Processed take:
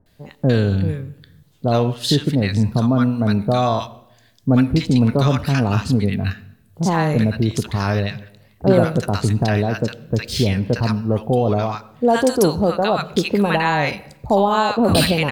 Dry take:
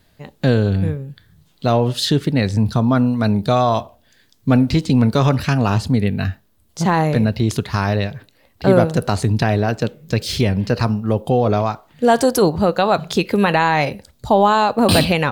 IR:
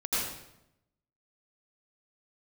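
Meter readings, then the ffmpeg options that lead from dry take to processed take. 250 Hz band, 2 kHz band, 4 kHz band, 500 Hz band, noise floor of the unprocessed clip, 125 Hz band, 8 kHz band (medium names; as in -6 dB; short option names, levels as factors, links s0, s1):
-0.5 dB, -1.5 dB, -1.0 dB, -1.5 dB, -58 dBFS, -0.5 dB, -1.0 dB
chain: -filter_complex "[0:a]acrossover=split=1000[s0][s1];[s1]adelay=60[s2];[s0][s2]amix=inputs=2:normalize=0,asplit=2[s3][s4];[1:a]atrim=start_sample=2205,highshelf=f=5300:g=-11[s5];[s4][s5]afir=irnorm=-1:irlink=0,volume=0.0447[s6];[s3][s6]amix=inputs=2:normalize=0,volume=0.891"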